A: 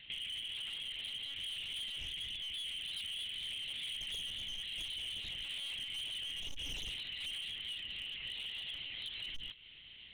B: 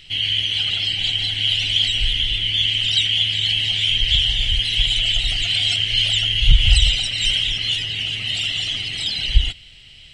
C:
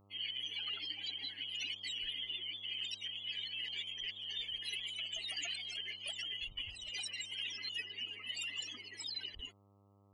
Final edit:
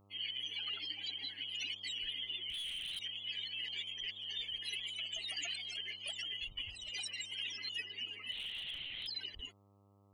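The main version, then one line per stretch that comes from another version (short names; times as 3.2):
C
2.5–2.99 from A
8.32–9.07 from A
not used: B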